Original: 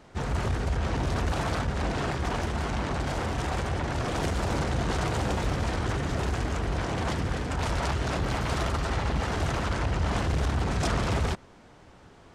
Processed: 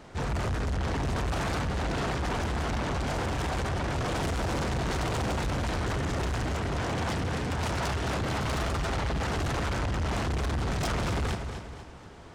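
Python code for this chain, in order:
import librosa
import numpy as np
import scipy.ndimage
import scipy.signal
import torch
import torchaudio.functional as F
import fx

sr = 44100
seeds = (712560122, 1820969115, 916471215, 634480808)

p1 = fx.highpass(x, sr, hz=63.0, slope=24, at=(6.43, 8.45))
p2 = p1 + fx.echo_feedback(p1, sr, ms=242, feedback_pct=39, wet_db=-13, dry=0)
p3 = 10.0 ** (-30.0 / 20.0) * np.tanh(p2 / 10.0 ** (-30.0 / 20.0))
y = F.gain(torch.from_numpy(p3), 4.0).numpy()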